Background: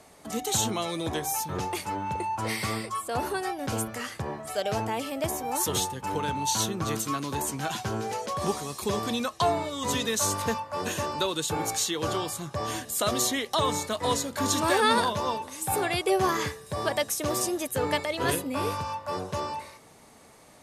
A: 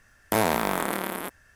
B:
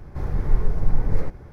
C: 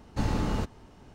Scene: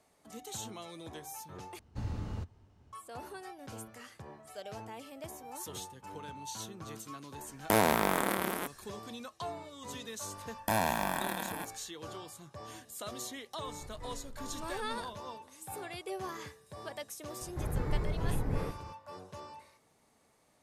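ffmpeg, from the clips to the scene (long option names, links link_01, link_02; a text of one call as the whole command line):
ffmpeg -i bed.wav -i cue0.wav -i cue1.wav -i cue2.wav -filter_complex "[1:a]asplit=2[link_01][link_02];[2:a]asplit=2[link_03][link_04];[0:a]volume=-15.5dB[link_05];[3:a]equalizer=frequency=91:width_type=o:width=0.91:gain=13[link_06];[link_02]aecho=1:1:1.2:0.73[link_07];[link_03]acompressor=threshold=-27dB:ratio=6:attack=3.2:release=140:knee=1:detection=peak[link_08];[link_04]highpass=frequency=76:poles=1[link_09];[link_05]asplit=2[link_10][link_11];[link_10]atrim=end=1.794[link_12];[link_06]atrim=end=1.14,asetpts=PTS-STARTPTS,volume=-15dB[link_13];[link_11]atrim=start=2.926[link_14];[link_01]atrim=end=1.55,asetpts=PTS-STARTPTS,volume=-3dB,afade=type=in:duration=0.004:curve=hsin,afade=type=out:start_time=1.546:duration=0.004:curve=hsin,adelay=325458S[link_15];[link_07]atrim=end=1.55,asetpts=PTS-STARTPTS,volume=-8.5dB,afade=type=in:duration=0.004:curve=hsin,afade=type=out:start_time=1.546:duration=0.004:curve=hsin,adelay=10360[link_16];[link_08]atrim=end=1.52,asetpts=PTS-STARTPTS,volume=-17dB,afade=type=in:duration=0.004:curve=hsin,afade=type=out:start_time=1.516:duration=0.004:curve=hsin,adelay=13660[link_17];[link_09]atrim=end=1.52,asetpts=PTS-STARTPTS,volume=-4.5dB,afade=type=in:duration=0.004:curve=hsin,afade=type=out:start_time=1.516:duration=0.004:curve=hsin,adelay=17410[link_18];[link_12][link_13]acrossfade=duration=0.004:curve1=hsin:curve2=hsin[link_19];[link_19][link_14]acrossfade=duration=0.004:curve1=hsin:curve2=hsin[link_20];[link_20][link_15][link_16][link_17][link_18]amix=inputs=5:normalize=0" out.wav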